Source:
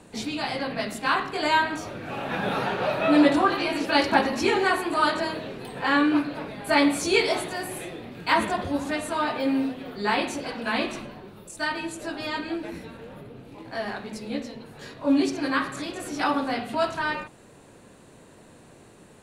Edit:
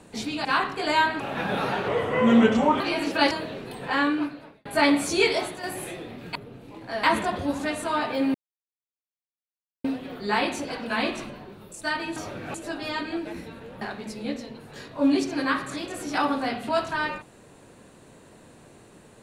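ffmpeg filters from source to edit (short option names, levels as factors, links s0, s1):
-filter_complex "[0:a]asplit=14[s0][s1][s2][s3][s4][s5][s6][s7][s8][s9][s10][s11][s12][s13];[s0]atrim=end=0.452[s14];[s1]atrim=start=1.008:end=1.762[s15];[s2]atrim=start=2.138:end=2.824[s16];[s3]atrim=start=2.82:end=3.54,asetpts=PTS-STARTPTS,asetrate=34398,aresample=44100[s17];[s4]atrim=start=3.536:end=4.052[s18];[s5]atrim=start=5.248:end=6.59,asetpts=PTS-STARTPTS,afade=t=out:st=0.542:d=0.8[s19];[s6]atrim=start=6.59:end=7.57,asetpts=PTS-STARTPTS,afade=t=in:d=0.004:c=hsin,afade=t=out:st=0.63:d=0.35:silence=0.473151[s20];[s7]atrim=start=7.57:end=8.292,asetpts=PTS-STARTPTS,afade=t=in:d=0.004:c=hsin:silence=0.473151[s21];[s8]atrim=start=13.188:end=13.872[s22];[s9]atrim=start=8.288:end=9.6,asetpts=PTS-STARTPTS,afade=t=out:st=1.308:d=0.004:c=hsin,apad=pad_dur=1.5[s23];[s10]atrim=start=9.6:end=11.922,asetpts=PTS-STARTPTS,afade=t=in:d=0.004:c=hsin[s24];[s11]atrim=start=1.758:end=2.142[s25];[s12]atrim=start=11.918:end=13.192[s26];[s13]atrim=start=13.868[s27];[s14][s15]acrossfade=d=0.004:c1=hsin:c2=hsin[s28];[s28][s16]acrossfade=d=0.004:c1=hsin:c2=hsin[s29];[s29][s17]acrossfade=d=0.004:c1=hsin:c2=hsin[s30];[s30][s18]acrossfade=d=0.004:c1=hsin:c2=hsin[s31];[s19][s20][s21]concat=n=3:v=0:a=1[s32];[s31][s32]acrossfade=d=0.004:c1=hsin:c2=hsin[s33];[s33][s22]acrossfade=d=0.004:c1=hsin:c2=hsin[s34];[s23][s24]concat=n=2:v=0:a=1[s35];[s34][s35]acrossfade=d=0.004:c1=hsin:c2=hsin[s36];[s36][s25]acrossfade=d=0.004:c1=hsin:c2=hsin[s37];[s37][s26]acrossfade=d=0.004:c1=hsin:c2=hsin[s38];[s38][s27]acrossfade=d=0.004:c1=hsin:c2=hsin"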